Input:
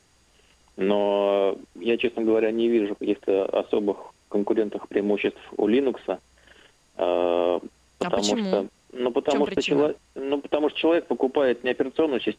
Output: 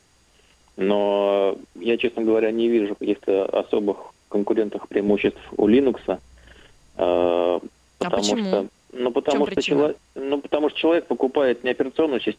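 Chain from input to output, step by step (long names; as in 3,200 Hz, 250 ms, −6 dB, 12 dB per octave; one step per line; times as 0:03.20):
0:05.08–0:07.30: low-shelf EQ 180 Hz +11 dB
level +2 dB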